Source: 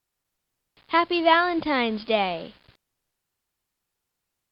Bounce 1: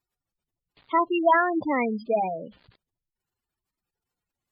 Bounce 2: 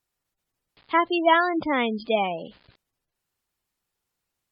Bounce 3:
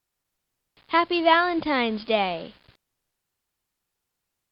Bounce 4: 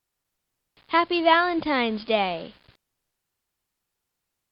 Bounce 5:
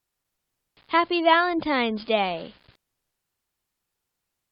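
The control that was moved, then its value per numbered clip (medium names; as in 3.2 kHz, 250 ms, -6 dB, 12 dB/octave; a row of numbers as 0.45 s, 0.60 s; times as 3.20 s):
spectral gate, under each frame's peak: -10 dB, -20 dB, -60 dB, -50 dB, -35 dB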